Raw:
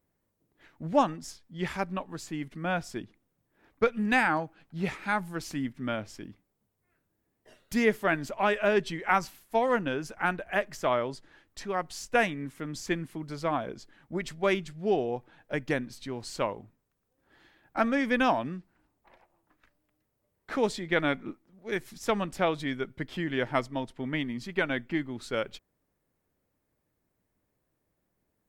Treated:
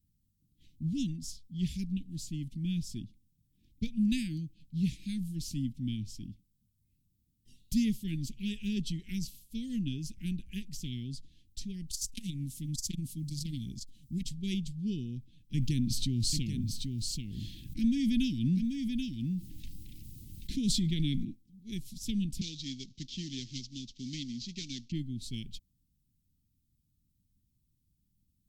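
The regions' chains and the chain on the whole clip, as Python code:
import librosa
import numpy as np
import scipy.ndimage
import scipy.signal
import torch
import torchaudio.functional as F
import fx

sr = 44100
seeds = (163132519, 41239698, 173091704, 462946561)

y = fx.chain(x, sr, fx.bass_treble(bass_db=3, treble_db=12),
    fx.transformer_sat(knee_hz=1500.0), at=(11.91, 14.27))
y = fx.chain(y, sr, fx.echo_single(ms=784, db=-10.5),
    fx.env_flatten(amount_pct=50), at=(15.54, 21.25))
y = fx.chain(y, sr, fx.cvsd(bps=32000),
    fx.bass_treble(bass_db=-12, treble_db=6),
    fx.band_squash(depth_pct=40), at=(22.41, 24.92))
y = scipy.signal.sosfilt(scipy.signal.cheby2(4, 70, [620.0, 1300.0], 'bandstop', fs=sr, output='sos'), y)
y = fx.low_shelf(y, sr, hz=130.0, db=10.0)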